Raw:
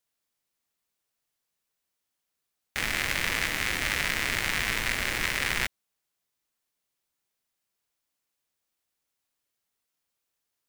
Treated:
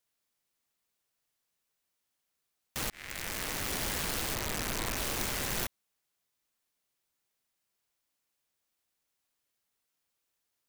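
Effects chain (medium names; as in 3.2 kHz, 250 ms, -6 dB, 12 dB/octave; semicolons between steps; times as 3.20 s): 2.90–3.76 s: fade in; 4.34–4.97 s: low-pass 2.2 kHz 12 dB/octave; integer overflow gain 25.5 dB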